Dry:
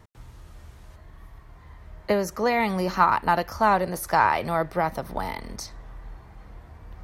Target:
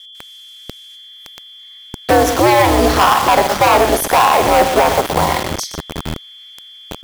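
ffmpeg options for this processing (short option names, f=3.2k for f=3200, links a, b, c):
-filter_complex "[0:a]adynamicequalizer=threshold=0.0158:dfrequency=650:dqfactor=1.6:tfrequency=650:tqfactor=1.6:attack=5:release=100:ratio=0.375:range=4:mode=boostabove:tftype=bell,asoftclip=type=hard:threshold=-18.5dB,asplit=2[a][b];[b]aecho=0:1:54|120:0.224|0.299[c];[a][c]amix=inputs=2:normalize=0,aeval=exprs='val(0)+0.00447*sin(2*PI*3300*n/s)':c=same,aeval=exprs='val(0)*sin(2*PI*120*n/s)':c=same,highpass=f=49:w=0.5412,highpass=f=49:w=1.3066,acrossover=split=2300[d][e];[d]acrusher=bits=5:mix=0:aa=0.000001[f];[f][e]amix=inputs=2:normalize=0,alimiter=level_in=17dB:limit=-1dB:release=50:level=0:latency=1,volume=-1dB"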